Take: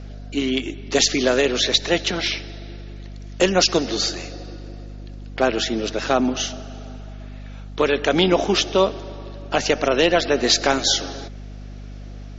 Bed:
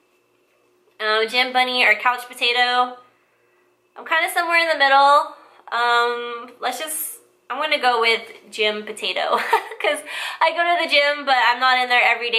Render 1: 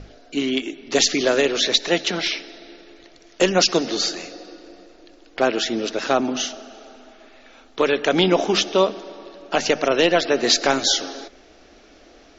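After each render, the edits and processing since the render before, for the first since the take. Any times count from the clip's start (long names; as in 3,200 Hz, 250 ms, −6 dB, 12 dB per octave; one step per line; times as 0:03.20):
mains-hum notches 50/100/150/200/250 Hz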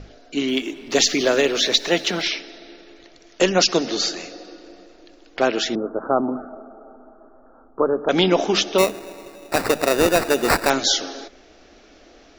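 0:00.48–0:02.22: mu-law and A-law mismatch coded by mu
0:05.75–0:08.09: Butterworth low-pass 1,400 Hz 72 dB per octave
0:08.78–0:10.70: sample-rate reduction 3,200 Hz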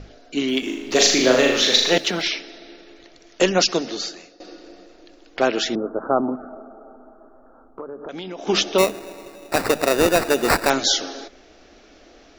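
0:00.59–0:01.98: flutter between parallel walls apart 6.7 metres, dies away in 0.68 s
0:03.50–0:04.40: fade out, to −16.5 dB
0:06.35–0:08.47: downward compressor, threshold −31 dBFS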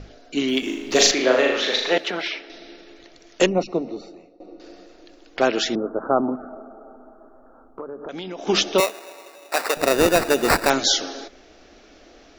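0:01.11–0:02.50: bass and treble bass −13 dB, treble −15 dB
0:03.46–0:04.60: moving average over 27 samples
0:08.80–0:09.77: high-pass filter 590 Hz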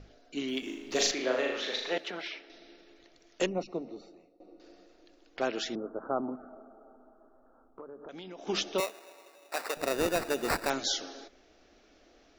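level −12 dB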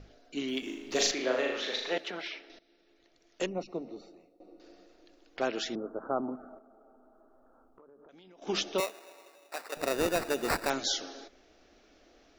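0:02.59–0:03.97: fade in, from −16 dB
0:06.58–0:08.42: downward compressor 3 to 1, threshold −57 dBFS
0:09.16–0:09.72: fade out equal-power, to −12 dB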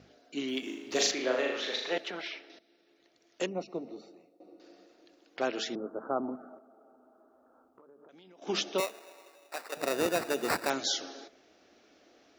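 high-pass filter 130 Hz 12 dB per octave
hum removal 222.2 Hz, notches 3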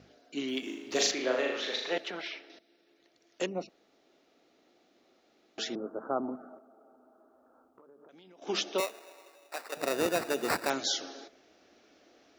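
0:03.69–0:05.58: fill with room tone
0:08.44–0:09.68: high-pass filter 210 Hz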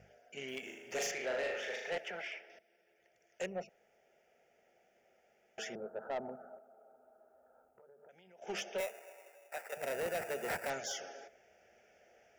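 phaser with its sweep stopped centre 1,100 Hz, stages 6
soft clipping −32 dBFS, distortion −9 dB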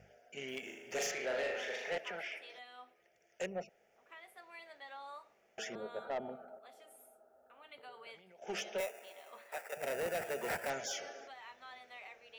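mix in bed −36 dB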